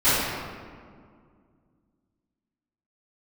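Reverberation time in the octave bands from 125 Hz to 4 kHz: 2.8, 2.9, 2.2, 1.9, 1.5, 1.1 s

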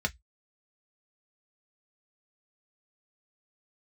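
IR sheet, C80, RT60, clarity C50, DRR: 43.0 dB, 0.10 s, 28.5 dB, 3.0 dB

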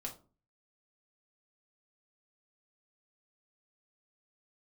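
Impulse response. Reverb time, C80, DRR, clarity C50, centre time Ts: 0.35 s, 18.5 dB, -1.5 dB, 11.5 dB, 13 ms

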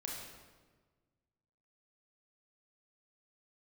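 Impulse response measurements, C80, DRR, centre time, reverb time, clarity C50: 3.0 dB, -2.5 dB, 75 ms, 1.4 s, 0.5 dB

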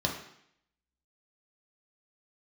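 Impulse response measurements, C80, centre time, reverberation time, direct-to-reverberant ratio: 9.5 dB, 28 ms, 0.70 s, -0.5 dB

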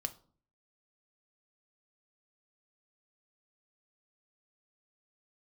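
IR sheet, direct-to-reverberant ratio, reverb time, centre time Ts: 7.0 dB, 0.50 s, 4 ms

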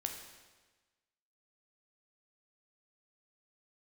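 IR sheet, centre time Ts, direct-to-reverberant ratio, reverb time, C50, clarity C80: 35 ms, 3.0 dB, 1.3 s, 5.5 dB, 7.5 dB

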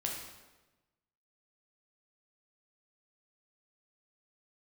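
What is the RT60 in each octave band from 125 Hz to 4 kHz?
1.3, 1.3, 1.2, 1.1, 1.0, 0.90 s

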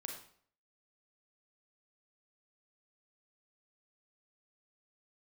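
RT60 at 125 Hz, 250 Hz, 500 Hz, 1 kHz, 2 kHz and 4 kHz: 0.60, 0.55, 0.60, 0.55, 0.50, 0.45 s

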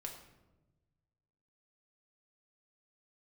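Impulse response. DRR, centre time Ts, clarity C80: 0.5 dB, 27 ms, 8.5 dB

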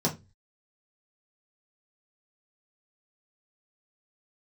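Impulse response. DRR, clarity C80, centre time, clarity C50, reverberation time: -4.0 dB, 22.5 dB, 14 ms, 14.5 dB, 0.25 s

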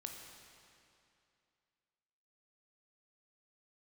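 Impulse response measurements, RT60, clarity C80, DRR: 2.6 s, 4.5 dB, 2.0 dB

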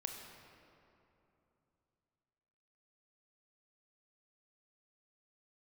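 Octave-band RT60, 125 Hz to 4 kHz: 3.8, 3.4, 3.1, 2.9, 2.2, 1.6 s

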